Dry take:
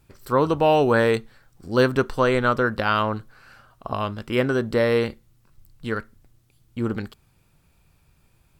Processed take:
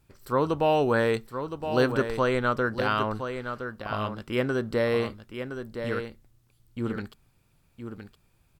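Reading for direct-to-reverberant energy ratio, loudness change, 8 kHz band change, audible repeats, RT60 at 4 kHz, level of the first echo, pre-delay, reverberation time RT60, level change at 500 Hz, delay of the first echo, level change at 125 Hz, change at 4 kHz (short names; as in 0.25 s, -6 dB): none, -5.0 dB, n/a, 1, none, -8.5 dB, none, none, -4.5 dB, 1.016 s, -4.5 dB, -4.5 dB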